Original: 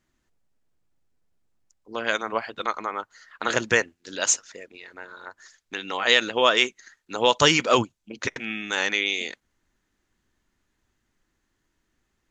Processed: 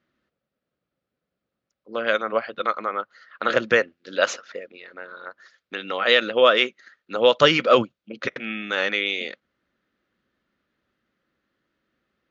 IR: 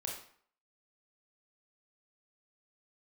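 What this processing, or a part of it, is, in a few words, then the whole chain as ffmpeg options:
guitar cabinet: -filter_complex "[0:a]highpass=94,equalizer=f=96:t=q:w=4:g=-8,equalizer=f=210:t=q:w=4:g=3,equalizer=f=540:t=q:w=4:g=9,equalizer=f=910:t=q:w=4:g=-7,equalizer=f=1300:t=q:w=4:g=6,lowpass=f=4400:w=0.5412,lowpass=f=4400:w=1.3066,asettb=1/sr,asplit=3[s0][s1][s2];[s0]atrim=end=4.184[s3];[s1]atrim=start=4.18:end=4.59,asetpts=PTS-STARTPTS,afade=t=in:d=0.004:c=qsin,afade=t=out:st=0.406:d=0.004:c=qsin,equalizer=f=960:w=0.38:g=6[s4];[s2]atrim=start=4.586[s5];[s3][s4]acrossfade=d=0.004:c1=hsin:c2=qsin[s6];[s6][s5]acrossfade=d=0.004:c1=qsin:c2=hsin"

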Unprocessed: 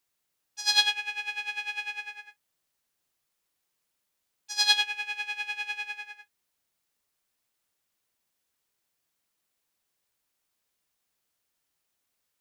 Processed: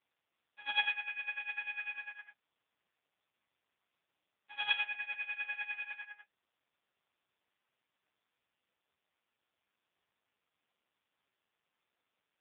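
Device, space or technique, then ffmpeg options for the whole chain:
telephone: -af "highpass=400,lowpass=3100,volume=0.75" -ar 8000 -c:a libopencore_amrnb -b:a 4750

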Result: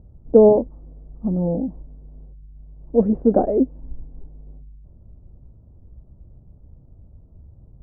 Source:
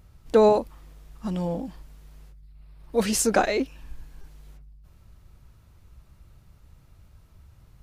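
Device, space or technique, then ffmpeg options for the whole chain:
under water: -af "lowpass=f=640:w=0.5412,lowpass=f=640:w=1.3066,equalizer=f=250:t=o:w=0.21:g=6,volume=2.11"

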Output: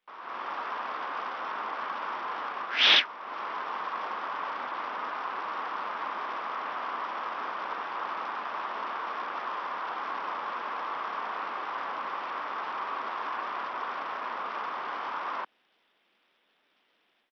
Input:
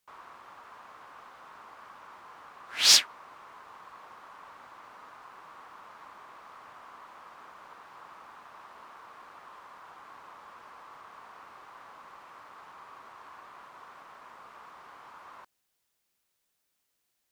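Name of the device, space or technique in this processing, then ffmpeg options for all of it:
Bluetooth headset: -af "highpass=f=210:w=0.5412,highpass=f=210:w=1.3066,dynaudnorm=f=200:g=3:m=4.47,aresample=8000,aresample=44100,volume=1.33" -ar 44100 -c:a sbc -b:a 64k

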